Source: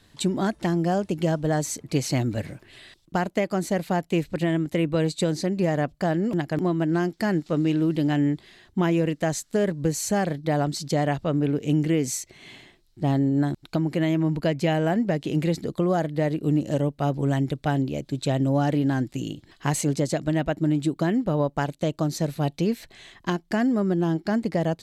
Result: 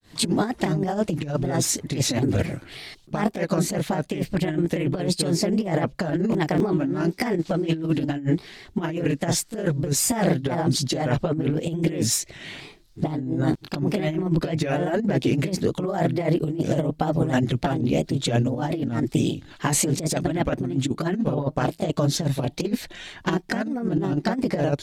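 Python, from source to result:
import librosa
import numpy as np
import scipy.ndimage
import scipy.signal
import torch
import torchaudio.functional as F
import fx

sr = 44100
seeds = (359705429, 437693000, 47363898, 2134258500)

y = fx.granulator(x, sr, seeds[0], grain_ms=221.0, per_s=18.0, spray_ms=16.0, spread_st=3)
y = fx.over_compress(y, sr, threshold_db=-30.0, ratio=-0.5)
y = F.gain(torch.from_numpy(y), 8.5).numpy()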